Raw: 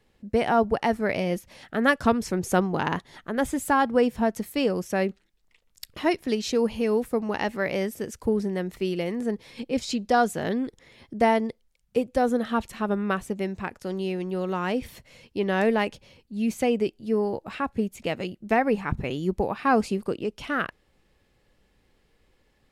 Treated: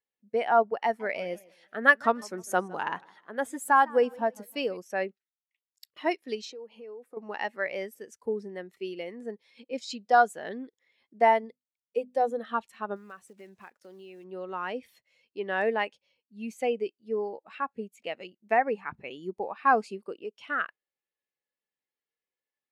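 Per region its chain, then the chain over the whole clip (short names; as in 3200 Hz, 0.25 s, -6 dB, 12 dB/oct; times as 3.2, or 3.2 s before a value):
0.84–4.77 high shelf 9400 Hz +4.5 dB + warbling echo 0.154 s, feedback 44%, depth 168 cents, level -16 dB
6.45–7.17 HPF 300 Hz + tilt -2 dB/oct + compressor 16:1, threshold -29 dBFS
11.41–12.39 bell 1400 Hz -9 dB 0.25 oct + notches 50/100/150/200/250 Hz
12.96–14.25 block floating point 5-bit + compressor 12:1, threshold -29 dBFS
whole clip: HPF 1000 Hz 6 dB/oct; spectral expander 1.5:1; gain +3.5 dB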